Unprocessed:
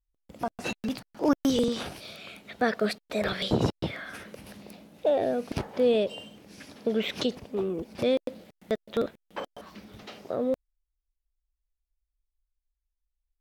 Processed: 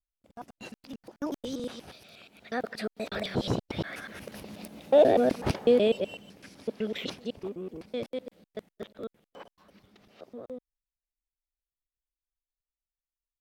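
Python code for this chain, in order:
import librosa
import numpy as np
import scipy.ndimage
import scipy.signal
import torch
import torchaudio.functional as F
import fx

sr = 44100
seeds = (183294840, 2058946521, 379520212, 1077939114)

y = fx.local_reverse(x, sr, ms=123.0)
y = fx.doppler_pass(y, sr, speed_mps=9, closest_m=5.5, pass_at_s=5.0)
y = F.gain(torch.from_numpy(y), 5.5).numpy()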